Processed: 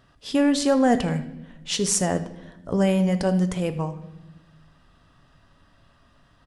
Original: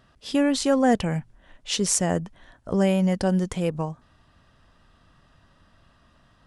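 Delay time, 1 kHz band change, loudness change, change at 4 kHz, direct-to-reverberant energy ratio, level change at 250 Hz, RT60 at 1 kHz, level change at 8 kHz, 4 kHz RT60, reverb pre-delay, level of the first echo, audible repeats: 78 ms, +0.5 dB, +1.0 dB, +0.5 dB, 9.0 dB, +1.0 dB, 0.80 s, +0.5 dB, 0.90 s, 7 ms, -18.5 dB, 1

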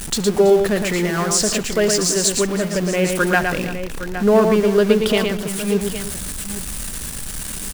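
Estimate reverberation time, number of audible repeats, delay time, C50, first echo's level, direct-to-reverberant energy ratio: no reverb, 4, 71 ms, no reverb, -20.0 dB, no reverb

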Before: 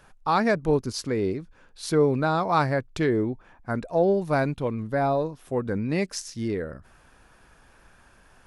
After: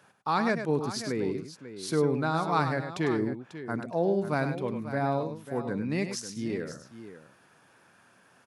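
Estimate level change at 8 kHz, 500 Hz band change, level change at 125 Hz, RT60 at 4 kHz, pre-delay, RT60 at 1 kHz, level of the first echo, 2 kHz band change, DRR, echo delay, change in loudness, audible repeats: -2.5 dB, -5.5 dB, -4.0 dB, no reverb, no reverb, no reverb, -8.5 dB, -3.0 dB, no reverb, 101 ms, -4.5 dB, 2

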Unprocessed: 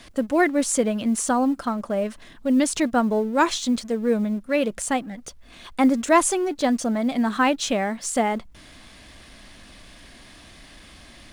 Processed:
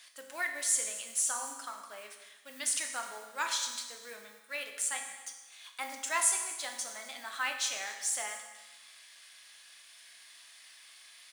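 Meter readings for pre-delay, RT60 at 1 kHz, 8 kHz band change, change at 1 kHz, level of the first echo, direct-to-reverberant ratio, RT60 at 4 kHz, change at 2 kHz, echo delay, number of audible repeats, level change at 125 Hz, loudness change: 7 ms, 1.1 s, -1.5 dB, -15.5 dB, -20.0 dB, 3.0 dB, 1.1 s, -8.0 dB, 256 ms, 1, no reading, -10.5 dB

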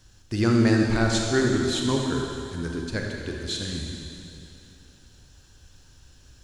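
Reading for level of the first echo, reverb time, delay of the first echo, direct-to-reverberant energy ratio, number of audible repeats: no echo, 2.9 s, no echo, 0.0 dB, no echo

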